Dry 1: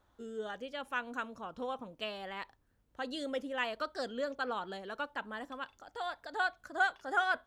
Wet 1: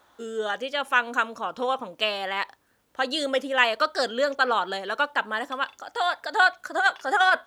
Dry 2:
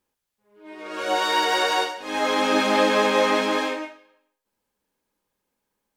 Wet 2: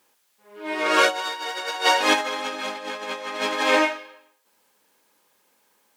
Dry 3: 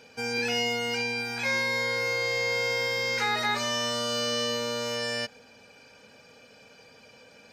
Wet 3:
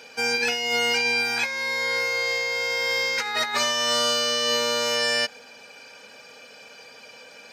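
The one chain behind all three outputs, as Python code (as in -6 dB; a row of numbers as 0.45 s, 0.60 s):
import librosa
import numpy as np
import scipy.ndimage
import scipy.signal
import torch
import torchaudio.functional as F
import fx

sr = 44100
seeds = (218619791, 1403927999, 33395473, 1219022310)

y = fx.highpass(x, sr, hz=630.0, slope=6)
y = fx.over_compress(y, sr, threshold_db=-31.0, ratio=-0.5)
y = y * 10.0 ** (-26 / 20.0) / np.sqrt(np.mean(np.square(y)))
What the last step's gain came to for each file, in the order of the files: +15.0 dB, +8.5 dB, +7.5 dB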